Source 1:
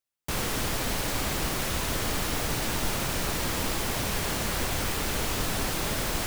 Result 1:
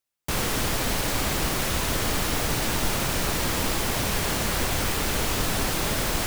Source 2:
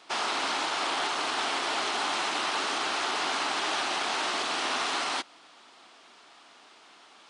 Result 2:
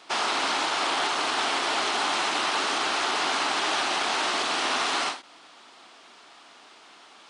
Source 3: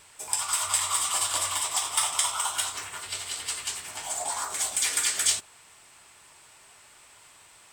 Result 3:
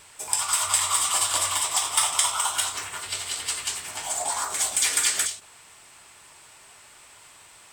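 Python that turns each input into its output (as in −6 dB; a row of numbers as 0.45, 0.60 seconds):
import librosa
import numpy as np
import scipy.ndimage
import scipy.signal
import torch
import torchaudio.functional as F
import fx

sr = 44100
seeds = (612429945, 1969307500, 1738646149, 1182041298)

y = fx.end_taper(x, sr, db_per_s=160.0)
y = F.gain(torch.from_numpy(y), 3.5).numpy()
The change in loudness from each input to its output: +3.5, +3.5, +3.0 LU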